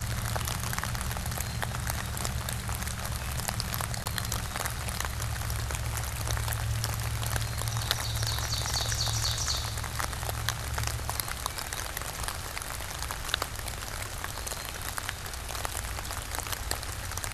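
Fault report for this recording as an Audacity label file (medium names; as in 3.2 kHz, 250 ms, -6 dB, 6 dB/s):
4.040000	4.060000	dropout 18 ms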